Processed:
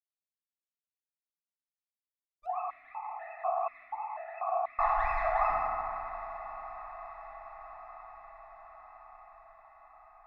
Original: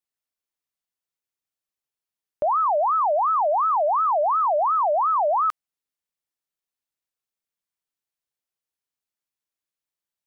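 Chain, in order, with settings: minimum comb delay 2.6 ms; gate -22 dBFS, range -53 dB; treble ducked by the level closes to 1400 Hz, closed at -23.5 dBFS; 4.86–5.22 spectral delete 380–1400 Hz; limiter -25.5 dBFS, peak gain reduction 9.5 dB; flange 0.98 Hz, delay 2.8 ms, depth 1.9 ms, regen -35%; diffused feedback echo 0.917 s, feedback 64%, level -15.5 dB; FDN reverb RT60 2.8 s, high-frequency decay 0.45×, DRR -9 dB; 2.46–4.79 vowel sequencer 4.1 Hz

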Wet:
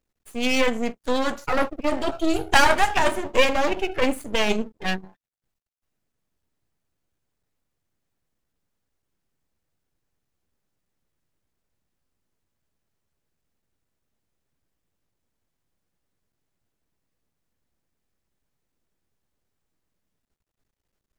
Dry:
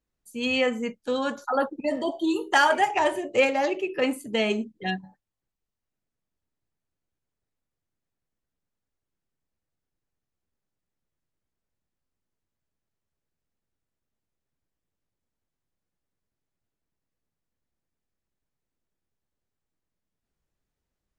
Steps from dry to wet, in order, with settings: 0.98–3.15 high shelf 6800 Hz +5 dB; half-wave rectifier; gain +7 dB

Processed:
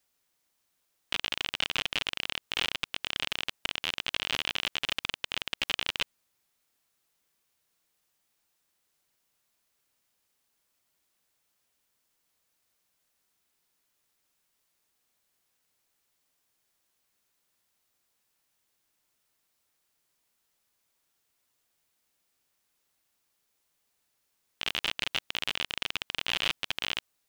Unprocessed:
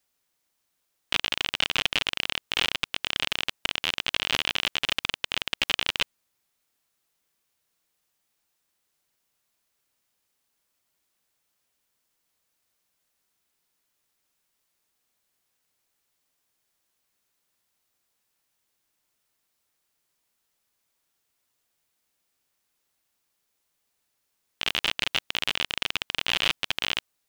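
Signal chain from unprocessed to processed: limiter -12.5 dBFS, peak gain reduction 10 dB

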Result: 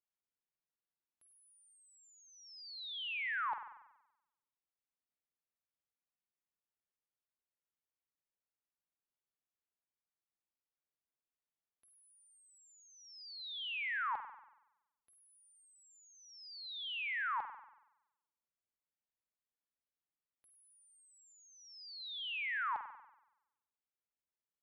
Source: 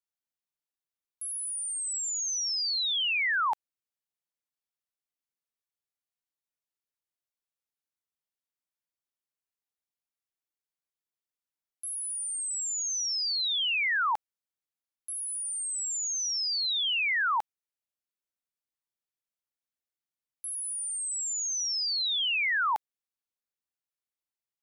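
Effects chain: compressor, threshold -31 dBFS, peak gain reduction 6 dB; air absorption 400 m; on a send: reverb RT60 0.90 s, pre-delay 47 ms, DRR 8 dB; on the sum: gain -2.5 dB

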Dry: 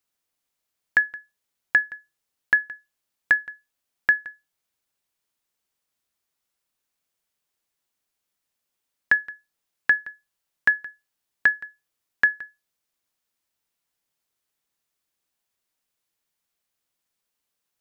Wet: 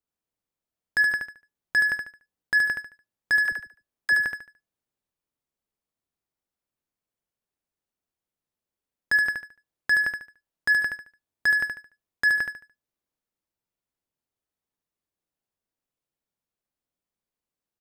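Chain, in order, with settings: tilt shelf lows +6.5 dB; sample leveller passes 3; transient shaper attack -8 dB, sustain +1 dB; 3.38–4.19 dispersion lows, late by 45 ms, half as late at 380 Hz; on a send: feedback echo 73 ms, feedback 31%, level -5 dB; on the sum: gain -1.5 dB

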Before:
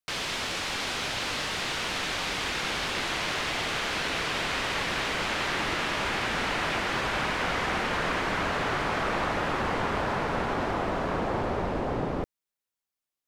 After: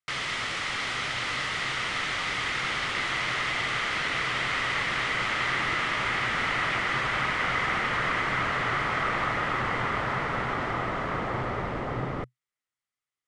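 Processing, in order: downsampling 22050 Hz; thirty-one-band EQ 125 Hz +10 dB, 1250 Hz +9 dB, 2000 Hz +11 dB, 3150 Hz +4 dB; gain -4 dB

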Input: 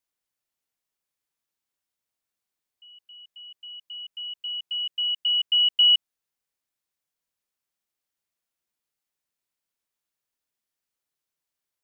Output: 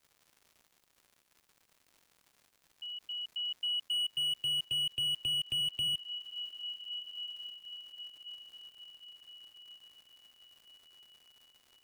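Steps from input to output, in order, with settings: compressor 12:1, threshold -32 dBFS, peak gain reduction 16.5 dB; diffused feedback echo 1.45 s, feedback 43%, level -14 dB; crackle 210/s -58 dBFS; slew limiter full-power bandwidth 36 Hz; gain +7.5 dB

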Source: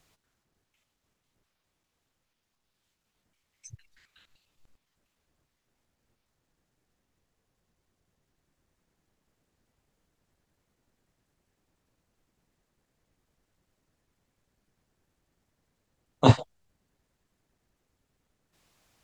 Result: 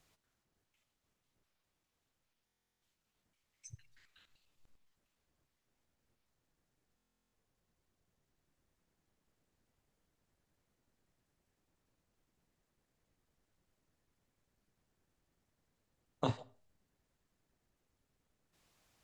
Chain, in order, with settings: compressor 16:1, threshold -25 dBFS, peak gain reduction 15 dB; reverb, pre-delay 10 ms, DRR 18 dB; stuck buffer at 2.45/6.96, samples 1024, times 15; gain -5.5 dB

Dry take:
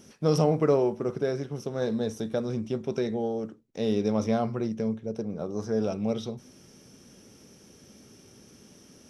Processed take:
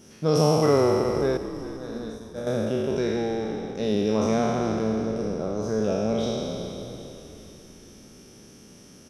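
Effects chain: spectral trails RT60 2.81 s; 1.37–2.47 expander -16 dBFS; on a send: frequency-shifting echo 0.397 s, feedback 53%, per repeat -51 Hz, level -13.5 dB

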